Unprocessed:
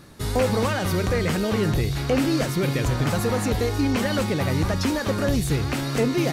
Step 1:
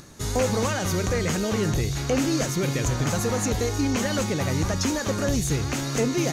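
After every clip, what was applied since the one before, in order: peaking EQ 6.5 kHz +13 dB 0.35 oct; upward compressor, threshold -41 dBFS; trim -2 dB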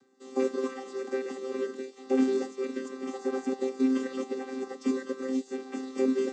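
vocoder on a held chord bare fifth, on C4; upward expansion 1.5:1, over -42 dBFS; trim -2.5 dB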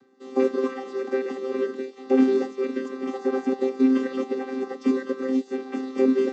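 distance through air 140 m; trim +6.5 dB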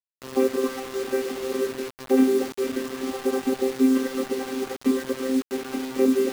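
bit crusher 6-bit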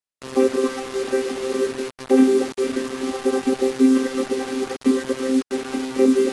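trim +4 dB; AAC 64 kbps 24 kHz

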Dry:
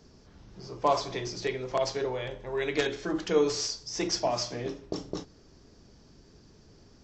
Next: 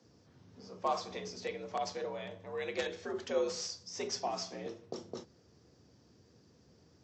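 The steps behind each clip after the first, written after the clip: frequency shift +62 Hz; trim -8 dB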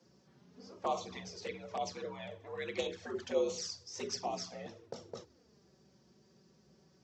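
touch-sensitive flanger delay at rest 5.9 ms, full sweep at -32 dBFS; trim +1.5 dB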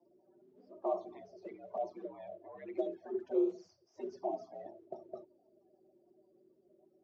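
coarse spectral quantiser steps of 30 dB; two resonant band-passes 480 Hz, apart 0.78 oct; trim +6.5 dB

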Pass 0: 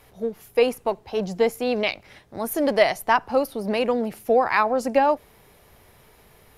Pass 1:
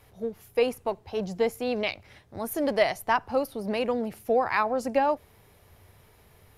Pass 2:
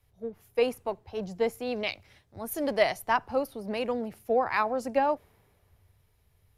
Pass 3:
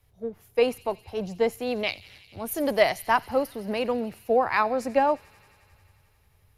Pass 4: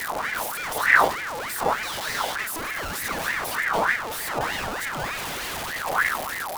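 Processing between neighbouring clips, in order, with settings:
peaking EQ 92 Hz +10.5 dB 0.67 oct; trim -5 dB
three bands expanded up and down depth 40%; trim -2.5 dB
feedback echo behind a high-pass 89 ms, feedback 83%, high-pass 2.9 kHz, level -17 dB; trim +3.5 dB
one-bit comparator; wind noise 200 Hz -24 dBFS; ring modulator with a swept carrier 1.3 kHz, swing 50%, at 3.3 Hz; trim -1 dB

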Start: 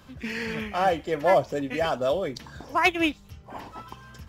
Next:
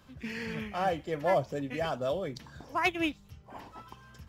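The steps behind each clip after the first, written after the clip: dynamic bell 140 Hz, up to +6 dB, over -46 dBFS, Q 1.3; trim -7 dB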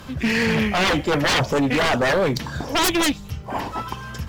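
sine folder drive 16 dB, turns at -15.5 dBFS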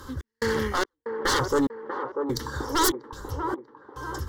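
static phaser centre 670 Hz, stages 6; trance gate "x.xx..xx...xx" 72 bpm -60 dB; feedback echo behind a band-pass 641 ms, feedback 41%, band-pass 610 Hz, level -4.5 dB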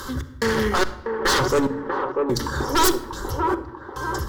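saturation -21 dBFS, distortion -13 dB; simulated room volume 2900 m³, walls furnished, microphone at 1.1 m; tape noise reduction on one side only encoder only; trim +7 dB

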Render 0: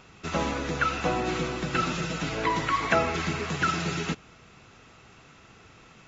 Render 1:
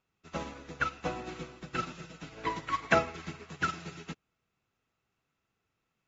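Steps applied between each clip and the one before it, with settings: upward expansion 2.5:1, over -39 dBFS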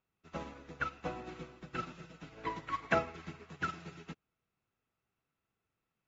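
treble shelf 4.3 kHz -8.5 dB; trim -4.5 dB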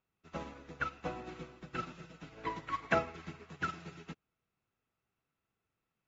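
no audible change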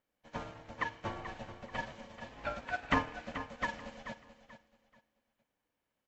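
ring modulator 390 Hz; on a send: feedback delay 434 ms, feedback 28%, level -11.5 dB; on the sum: trim +3.5 dB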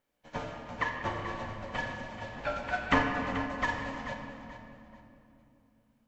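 reverberation RT60 2.8 s, pre-delay 7 ms, DRR 2 dB; trim +3.5 dB

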